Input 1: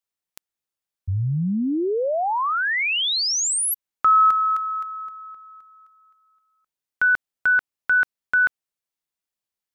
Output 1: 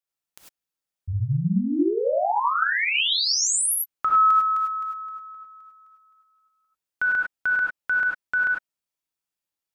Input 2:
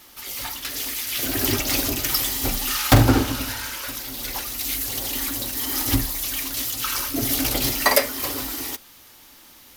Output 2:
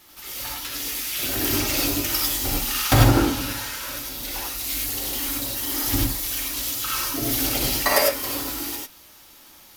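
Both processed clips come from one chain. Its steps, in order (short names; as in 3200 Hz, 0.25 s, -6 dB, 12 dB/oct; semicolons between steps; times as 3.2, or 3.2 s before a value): non-linear reverb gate 0.12 s rising, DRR -2 dB; gain -4.5 dB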